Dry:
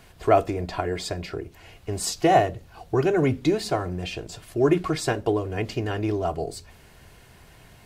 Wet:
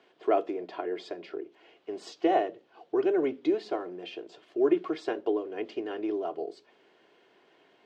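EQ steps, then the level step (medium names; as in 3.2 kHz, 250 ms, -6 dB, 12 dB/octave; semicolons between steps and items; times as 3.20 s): ladder high-pass 290 Hz, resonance 45%; distance through air 180 m; peaking EQ 3.2 kHz +6 dB 0.28 oct; 0.0 dB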